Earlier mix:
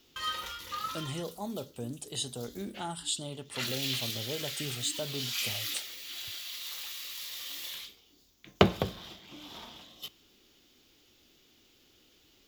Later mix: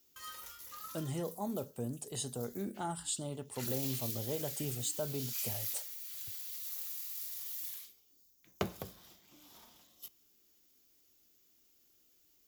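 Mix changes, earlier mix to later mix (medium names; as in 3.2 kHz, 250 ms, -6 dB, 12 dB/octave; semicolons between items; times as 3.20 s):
background: add pre-emphasis filter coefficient 0.8; master: add peaking EQ 3.4 kHz -11 dB 1.1 oct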